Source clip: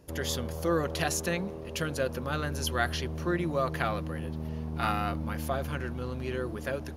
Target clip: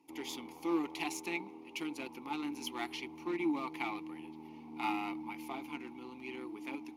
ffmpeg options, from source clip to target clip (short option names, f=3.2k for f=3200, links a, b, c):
-filter_complex "[0:a]flanger=delay=0.9:depth=3.5:regen=72:speed=0.95:shape=triangular,asplit=2[a][b];[b]acrusher=bits=4:mix=0:aa=0.5,volume=-9.5dB[c];[a][c]amix=inputs=2:normalize=0,asplit=3[d][e][f];[d]bandpass=f=300:t=q:w=8,volume=0dB[g];[e]bandpass=f=870:t=q:w=8,volume=-6dB[h];[f]bandpass=f=2.24k:t=q:w=8,volume=-9dB[i];[g][h][i]amix=inputs=3:normalize=0,aemphasis=mode=production:type=riaa,volume=11dB"